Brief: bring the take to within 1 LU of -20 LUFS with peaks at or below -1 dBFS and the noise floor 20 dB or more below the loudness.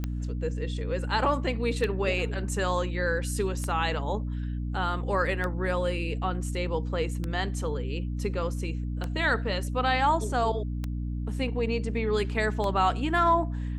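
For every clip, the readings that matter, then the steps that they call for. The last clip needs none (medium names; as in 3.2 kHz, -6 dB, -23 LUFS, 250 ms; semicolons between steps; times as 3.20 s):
clicks found 8; hum 60 Hz; highest harmonic 300 Hz; hum level -29 dBFS; loudness -28.5 LUFS; peak level -12.0 dBFS; loudness target -20.0 LUFS
-> de-click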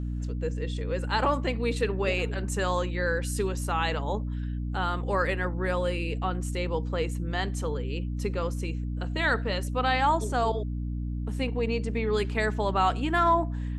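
clicks found 0; hum 60 Hz; highest harmonic 300 Hz; hum level -29 dBFS
-> de-hum 60 Hz, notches 5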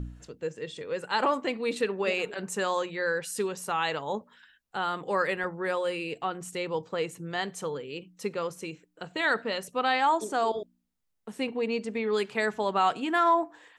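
hum not found; loudness -29.5 LUFS; peak level -14.0 dBFS; loudness target -20.0 LUFS
-> trim +9.5 dB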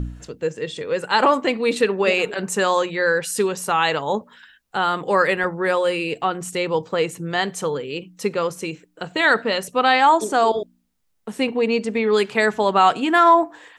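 loudness -20.0 LUFS; peak level -4.5 dBFS; noise floor -65 dBFS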